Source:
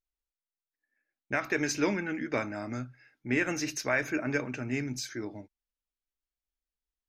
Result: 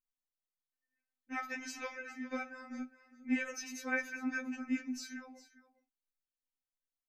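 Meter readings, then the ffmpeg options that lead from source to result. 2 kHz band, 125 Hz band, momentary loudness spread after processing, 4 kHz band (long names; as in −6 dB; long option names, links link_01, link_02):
−7.0 dB, below −30 dB, 12 LU, −9.5 dB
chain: -af "aecho=1:1:407:0.15,afftfilt=real='re*3.46*eq(mod(b,12),0)':imag='im*3.46*eq(mod(b,12),0)':win_size=2048:overlap=0.75,volume=-6dB"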